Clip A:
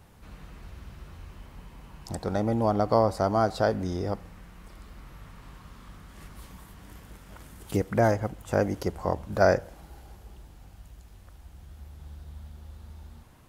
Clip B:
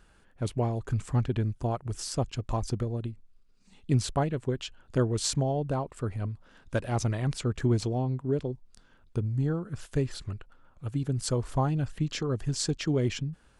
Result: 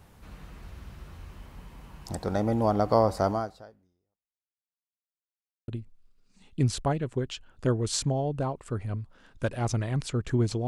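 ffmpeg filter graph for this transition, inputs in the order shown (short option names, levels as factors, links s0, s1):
-filter_complex "[0:a]apad=whole_dur=10.67,atrim=end=10.67,asplit=2[s0][s1];[s0]atrim=end=4.73,asetpts=PTS-STARTPTS,afade=t=out:st=3.3:d=1.43:c=exp[s2];[s1]atrim=start=4.73:end=5.68,asetpts=PTS-STARTPTS,volume=0[s3];[1:a]atrim=start=2.99:end=7.98,asetpts=PTS-STARTPTS,afade=t=in:d=0.004:c=hsin[s4];[s2][s3][s4]concat=n=3:v=0:a=1"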